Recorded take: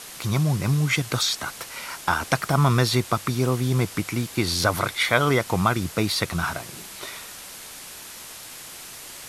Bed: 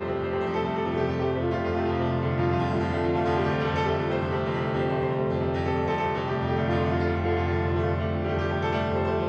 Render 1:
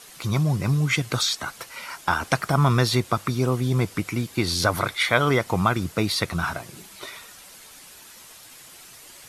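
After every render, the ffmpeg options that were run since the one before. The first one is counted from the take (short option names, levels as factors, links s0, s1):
-af "afftdn=nr=8:nf=-40"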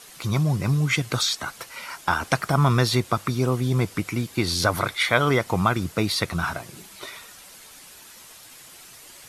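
-af anull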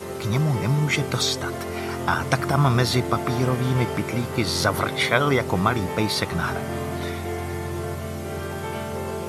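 -filter_complex "[1:a]volume=0.631[s0];[0:a][s0]amix=inputs=2:normalize=0"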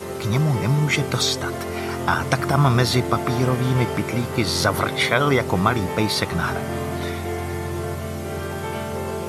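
-af "volume=1.26,alimiter=limit=0.708:level=0:latency=1"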